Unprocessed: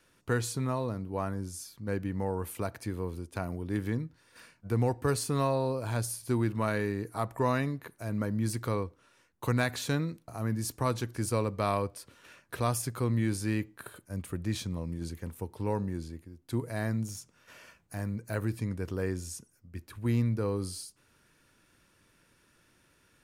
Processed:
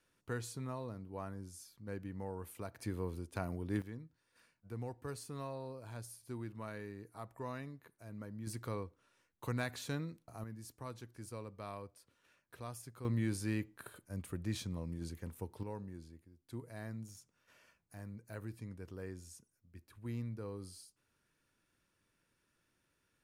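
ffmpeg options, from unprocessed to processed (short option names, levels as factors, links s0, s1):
-af "asetnsamples=n=441:p=0,asendcmd='2.79 volume volume -4.5dB;3.82 volume volume -15.5dB;8.47 volume volume -9.5dB;10.44 volume volume -17dB;13.05 volume volume -6dB;15.63 volume volume -13.5dB',volume=0.282"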